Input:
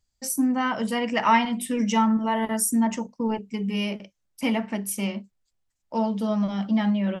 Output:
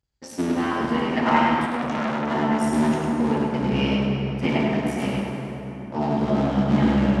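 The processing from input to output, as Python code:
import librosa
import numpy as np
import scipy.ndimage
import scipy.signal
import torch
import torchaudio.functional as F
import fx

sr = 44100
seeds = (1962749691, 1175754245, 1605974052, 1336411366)

y = fx.cycle_switch(x, sr, every=3, mode='muted')
y = scipy.signal.sosfilt(scipy.signal.butter(2, 50.0, 'highpass', fs=sr, output='sos'), y)
y = fx.high_shelf(y, sr, hz=2500.0, db=10.0)
y = fx.rider(y, sr, range_db=10, speed_s=2.0)
y = fx.spacing_loss(y, sr, db_at_10k=28)
y = y + 10.0 ** (-4.0 / 20.0) * np.pad(y, (int(103 * sr / 1000.0), 0))[:len(y)]
y = fx.rev_plate(y, sr, seeds[0], rt60_s=4.0, hf_ratio=0.5, predelay_ms=0, drr_db=-1.5)
y = fx.transformer_sat(y, sr, knee_hz=1200.0, at=(1.66, 2.31))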